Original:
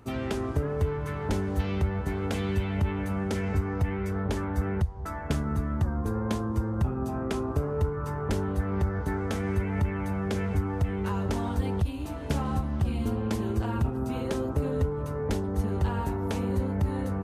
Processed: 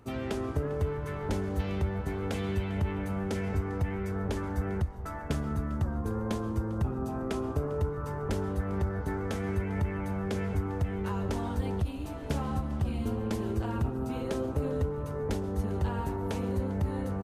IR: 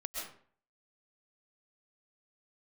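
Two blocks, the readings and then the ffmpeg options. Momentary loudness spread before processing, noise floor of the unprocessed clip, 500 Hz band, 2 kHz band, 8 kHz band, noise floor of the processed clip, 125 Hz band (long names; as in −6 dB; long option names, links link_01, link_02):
2 LU, −34 dBFS, −2.0 dB, −3.0 dB, −3.5 dB, −37 dBFS, −3.5 dB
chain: -filter_complex "[0:a]equalizer=frequency=500:width_type=o:width=0.77:gain=2,asplit=5[link_01][link_02][link_03][link_04][link_05];[link_02]adelay=399,afreqshift=-55,volume=-20dB[link_06];[link_03]adelay=798,afreqshift=-110,volume=-25.2dB[link_07];[link_04]adelay=1197,afreqshift=-165,volume=-30.4dB[link_08];[link_05]adelay=1596,afreqshift=-220,volume=-35.6dB[link_09];[link_01][link_06][link_07][link_08][link_09]amix=inputs=5:normalize=0,asplit=2[link_10][link_11];[1:a]atrim=start_sample=2205[link_12];[link_11][link_12]afir=irnorm=-1:irlink=0,volume=-14dB[link_13];[link_10][link_13]amix=inputs=2:normalize=0,volume=-4.5dB"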